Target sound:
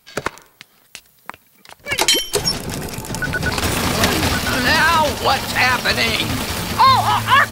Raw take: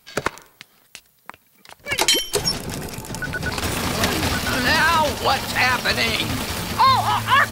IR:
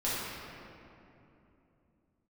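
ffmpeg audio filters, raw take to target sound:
-af "dynaudnorm=framelen=410:gausssize=3:maxgain=7dB"

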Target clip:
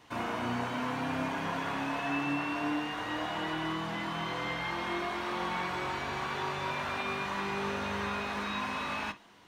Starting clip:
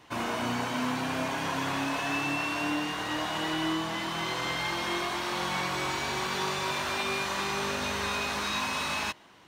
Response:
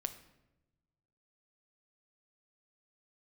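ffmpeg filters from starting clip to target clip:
-filter_complex "[0:a]acrossover=split=3000[link_01][link_02];[link_02]acompressor=threshold=-50dB:ratio=4:attack=1:release=60[link_03];[link_01][link_03]amix=inputs=2:normalize=0[link_04];[1:a]atrim=start_sample=2205,atrim=end_sample=4410,asetrate=70560,aresample=44100[link_05];[link_04][link_05]afir=irnorm=-1:irlink=0,volume=2.5dB"

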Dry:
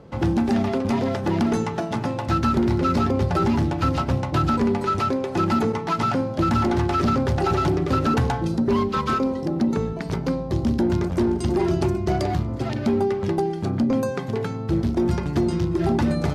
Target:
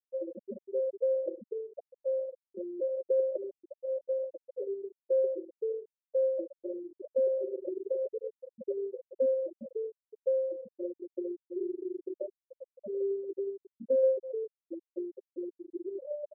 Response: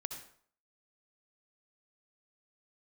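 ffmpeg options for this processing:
-filter_complex "[0:a]asplit=3[link_01][link_02][link_03];[link_01]bandpass=frequency=530:width_type=q:width=8,volume=0dB[link_04];[link_02]bandpass=frequency=1840:width_type=q:width=8,volume=-6dB[link_05];[link_03]bandpass=frequency=2480:width_type=q:width=8,volume=-9dB[link_06];[link_04][link_05][link_06]amix=inputs=3:normalize=0,equalizer=frequency=1200:width_type=o:width=0.79:gain=-6.5,aecho=1:1:971:0.106,asplit=2[link_07][link_08];[1:a]atrim=start_sample=2205,afade=type=out:start_time=0.14:duration=0.01,atrim=end_sample=6615,highshelf=frequency=2300:gain=-3.5[link_09];[link_08][link_09]afir=irnorm=-1:irlink=0,volume=-2.5dB[link_10];[link_07][link_10]amix=inputs=2:normalize=0,aeval=exprs='0.141*(cos(1*acos(clip(val(0)/0.141,-1,1)))-cos(1*PI/2))+0.002*(cos(8*acos(clip(val(0)/0.141,-1,1)))-cos(8*PI/2))':channel_layout=same,lowshelf=frequency=98:gain=-6,afftfilt=real='re*gte(hypot(re,im),0.158)':imag='im*gte(hypot(re,im),0.158)':win_size=1024:overlap=0.75,adynamicsmooth=sensitivity=3:basefreq=6600"

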